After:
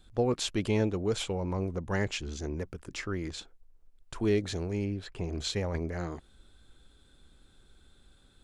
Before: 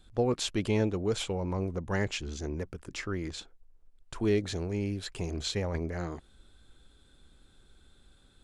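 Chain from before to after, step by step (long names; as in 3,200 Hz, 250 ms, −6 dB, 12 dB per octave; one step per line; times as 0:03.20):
0:04.85–0:05.33: low-pass filter 2,000 Hz 6 dB per octave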